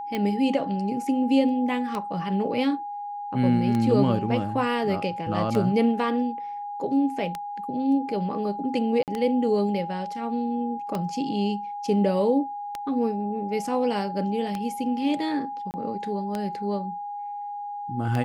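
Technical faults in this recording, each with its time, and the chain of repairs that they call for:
tick 33 1/3 rpm -15 dBFS
whine 820 Hz -31 dBFS
9.03–9.08 s: dropout 48 ms
15.71–15.74 s: dropout 29 ms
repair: de-click; band-stop 820 Hz, Q 30; interpolate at 9.03 s, 48 ms; interpolate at 15.71 s, 29 ms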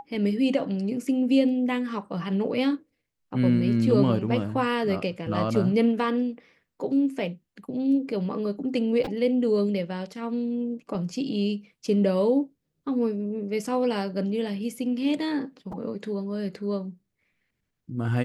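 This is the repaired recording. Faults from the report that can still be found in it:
nothing left

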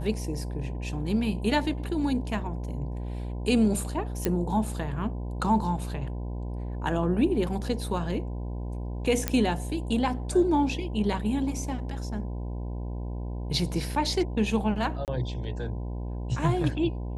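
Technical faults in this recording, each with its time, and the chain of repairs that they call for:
buzz 60 Hz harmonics 17 -33 dBFS
4.25 s: pop -11 dBFS
9.28 s: pop -9 dBFS
15.05–15.08 s: dropout 28 ms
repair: de-click; de-hum 60 Hz, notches 17; interpolate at 15.05 s, 28 ms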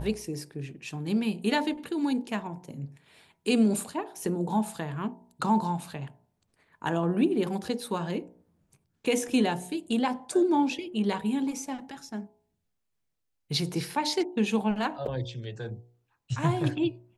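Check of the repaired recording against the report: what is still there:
nothing left

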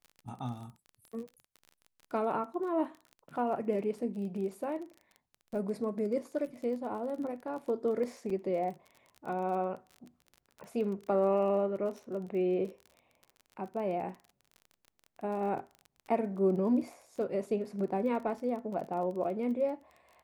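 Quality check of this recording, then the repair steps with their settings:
crackle 29 per s -41 dBFS
8.30 s: dropout 3 ms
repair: de-click; interpolate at 8.30 s, 3 ms

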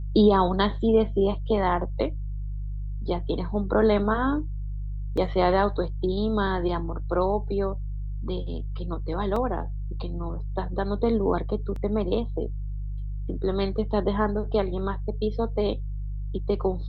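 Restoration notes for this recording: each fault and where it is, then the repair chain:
hum 50 Hz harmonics 3 -31 dBFS
5.17 s: dropout 4.8 ms
9.36 s: dropout 3.6 ms
11.76 s: dropout 3 ms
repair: de-hum 50 Hz, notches 3; interpolate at 5.17 s, 4.8 ms; interpolate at 9.36 s, 3.6 ms; interpolate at 11.76 s, 3 ms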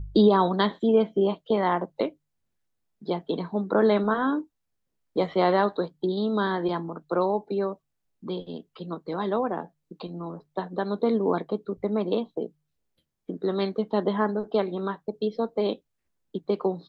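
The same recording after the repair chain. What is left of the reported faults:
nothing left

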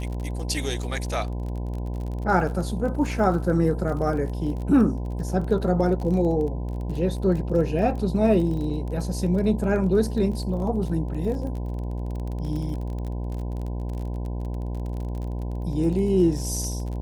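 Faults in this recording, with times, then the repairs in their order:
buzz 60 Hz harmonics 17 -29 dBFS
crackle 35 per s -32 dBFS
8.70 s: dropout 3.6 ms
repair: de-click; de-hum 60 Hz, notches 17; interpolate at 8.70 s, 3.6 ms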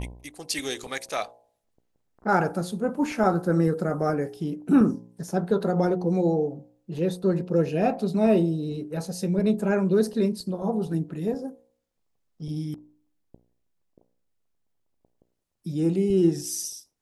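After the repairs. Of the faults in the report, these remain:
nothing left

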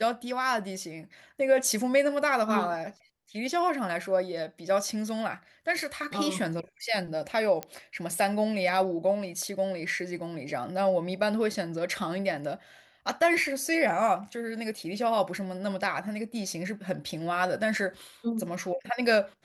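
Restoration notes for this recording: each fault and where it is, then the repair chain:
7.63 s: pop -17 dBFS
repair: de-click

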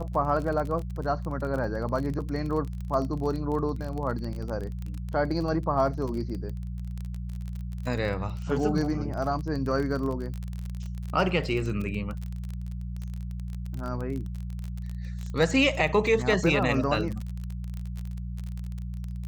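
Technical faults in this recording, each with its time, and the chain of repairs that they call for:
crackle 27 per s -31 dBFS
hum 60 Hz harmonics 3 -34 dBFS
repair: de-click; de-hum 60 Hz, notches 3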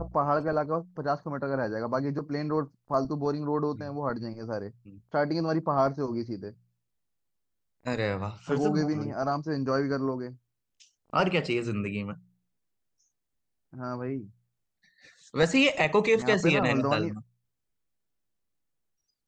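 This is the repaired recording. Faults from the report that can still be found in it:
nothing left

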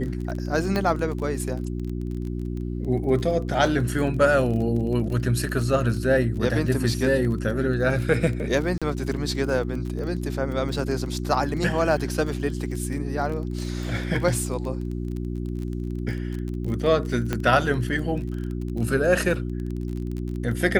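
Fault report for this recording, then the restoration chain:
crackle 25 per s -30 dBFS
hum 60 Hz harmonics 6 -29 dBFS
0.76 s: pop -12 dBFS
8.78–8.82 s: dropout 36 ms
17.33 s: pop -11 dBFS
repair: de-click; de-hum 60 Hz, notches 6; interpolate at 8.78 s, 36 ms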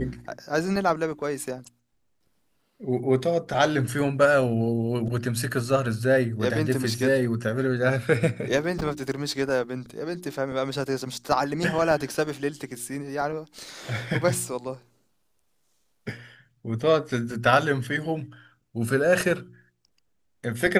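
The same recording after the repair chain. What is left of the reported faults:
17.33 s: pop

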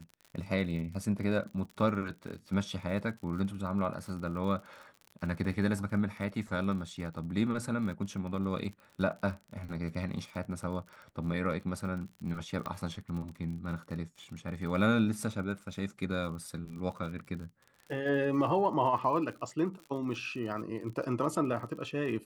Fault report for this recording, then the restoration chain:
crackle 51 per s -41 dBFS
12.66 s: pop -24 dBFS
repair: de-click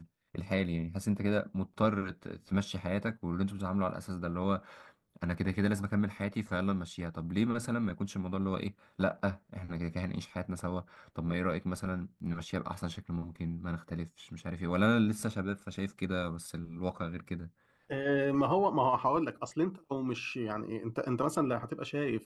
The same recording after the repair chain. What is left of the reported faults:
12.66 s: pop

